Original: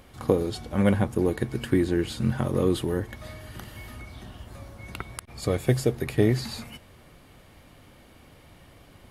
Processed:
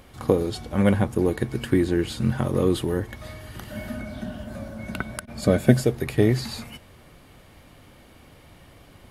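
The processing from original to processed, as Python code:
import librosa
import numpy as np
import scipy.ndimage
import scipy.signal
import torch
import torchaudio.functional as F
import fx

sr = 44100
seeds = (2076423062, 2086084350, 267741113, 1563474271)

y = fx.small_body(x, sr, hz=(220.0, 600.0, 1500.0), ring_ms=50, db=fx.line((3.69, 17.0), (5.81, 13.0)), at=(3.69, 5.81), fade=0.02)
y = y * librosa.db_to_amplitude(2.0)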